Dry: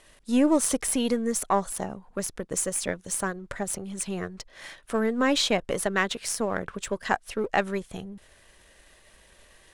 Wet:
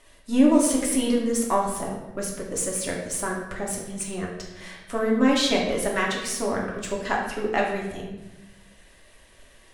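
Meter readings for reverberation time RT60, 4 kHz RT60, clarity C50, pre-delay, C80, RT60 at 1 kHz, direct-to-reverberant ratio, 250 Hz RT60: 1.0 s, 0.80 s, 4.0 dB, 3 ms, 6.5 dB, 0.90 s, −2.5 dB, 1.4 s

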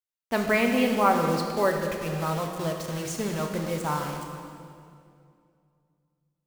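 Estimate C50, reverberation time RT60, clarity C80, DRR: 4.0 dB, 2.3 s, 5.0 dB, 2.0 dB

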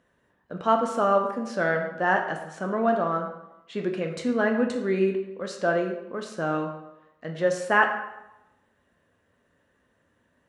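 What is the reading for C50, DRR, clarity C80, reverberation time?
7.0 dB, 2.5 dB, 9.0 dB, 0.95 s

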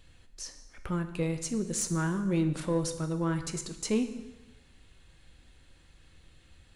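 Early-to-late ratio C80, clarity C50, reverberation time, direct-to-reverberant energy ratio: 12.5 dB, 10.5 dB, 1.1 s, 7.5 dB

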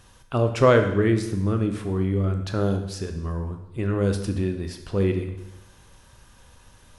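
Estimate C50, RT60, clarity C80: 8.0 dB, 0.95 s, 10.5 dB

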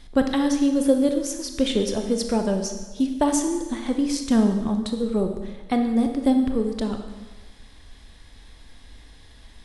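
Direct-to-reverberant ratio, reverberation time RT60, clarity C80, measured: 5.0 dB, 1.3 s, 8.5 dB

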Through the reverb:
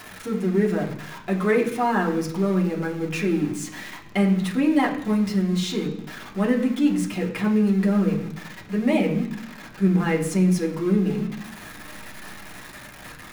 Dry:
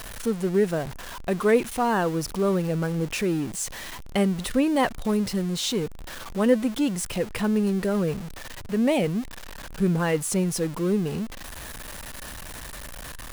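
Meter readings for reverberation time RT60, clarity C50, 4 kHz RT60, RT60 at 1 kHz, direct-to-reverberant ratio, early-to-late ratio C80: 0.70 s, 9.5 dB, 0.95 s, 0.70 s, −2.5 dB, 12.0 dB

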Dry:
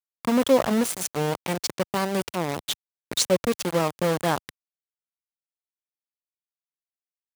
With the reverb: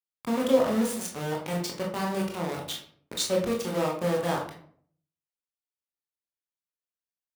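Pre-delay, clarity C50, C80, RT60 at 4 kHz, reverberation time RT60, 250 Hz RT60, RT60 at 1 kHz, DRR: 18 ms, 5.0 dB, 10.0 dB, 0.35 s, 0.55 s, 0.70 s, 0.50 s, −1.5 dB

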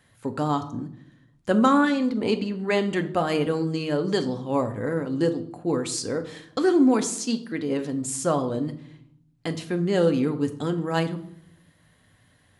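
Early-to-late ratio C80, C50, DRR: 17.0 dB, 14.0 dB, 7.0 dB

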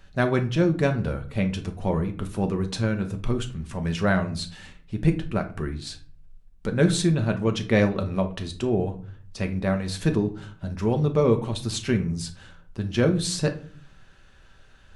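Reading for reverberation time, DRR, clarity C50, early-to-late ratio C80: 0.45 s, 5.0 dB, 13.0 dB, 19.0 dB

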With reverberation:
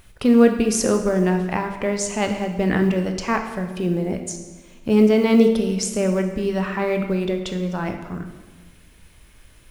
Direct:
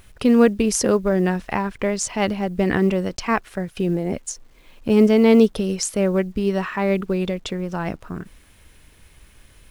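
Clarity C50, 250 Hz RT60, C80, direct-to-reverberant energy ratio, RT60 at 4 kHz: 7.5 dB, 1.6 s, 9.5 dB, 5.0 dB, 1.1 s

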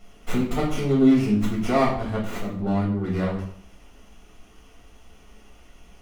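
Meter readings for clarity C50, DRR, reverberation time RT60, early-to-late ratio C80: 5.5 dB, −5.0 dB, 0.60 s, 9.0 dB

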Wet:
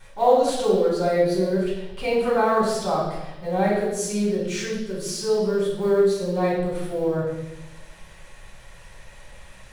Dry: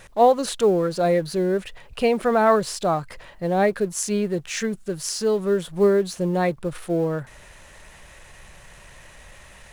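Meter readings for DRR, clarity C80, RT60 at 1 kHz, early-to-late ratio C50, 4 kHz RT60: −6.0 dB, 4.5 dB, 0.95 s, 1.0 dB, 1.1 s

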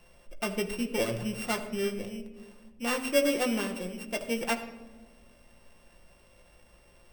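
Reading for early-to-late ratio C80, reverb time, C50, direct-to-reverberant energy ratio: 12.5 dB, non-exponential decay, 10.5 dB, 3.5 dB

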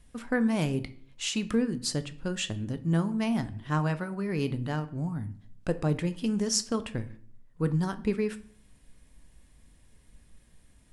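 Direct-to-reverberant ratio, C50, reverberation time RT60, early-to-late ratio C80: 11.0 dB, 16.5 dB, 0.55 s, 21.0 dB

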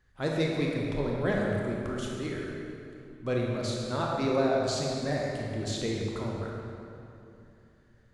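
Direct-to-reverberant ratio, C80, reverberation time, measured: −2.5 dB, 0.5 dB, 2.8 s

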